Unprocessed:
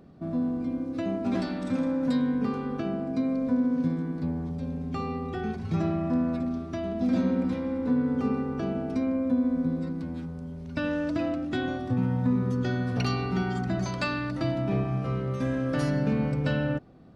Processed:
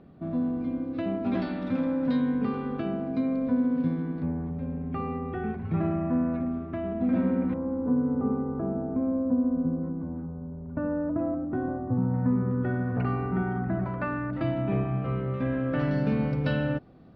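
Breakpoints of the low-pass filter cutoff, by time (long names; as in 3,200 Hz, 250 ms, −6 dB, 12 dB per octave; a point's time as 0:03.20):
low-pass filter 24 dB per octave
3,700 Hz
from 0:04.22 2,400 Hz
from 0:07.54 1,200 Hz
from 0:12.14 1,800 Hz
from 0:14.33 2,900 Hz
from 0:15.91 4,700 Hz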